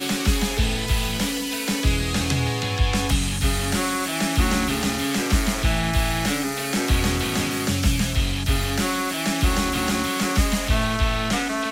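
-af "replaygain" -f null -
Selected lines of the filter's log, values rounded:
track_gain = +6.3 dB
track_peak = 0.306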